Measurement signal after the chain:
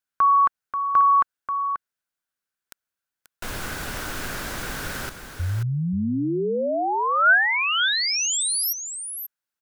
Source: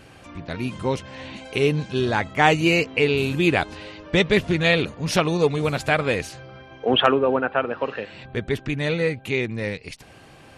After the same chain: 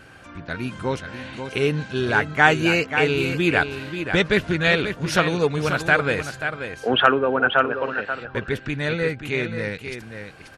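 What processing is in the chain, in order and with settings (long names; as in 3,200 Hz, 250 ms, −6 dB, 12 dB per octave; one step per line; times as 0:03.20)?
parametric band 1,500 Hz +11 dB 0.38 octaves
on a send: single-tap delay 535 ms −8.5 dB
on the sum: level −1.5 dB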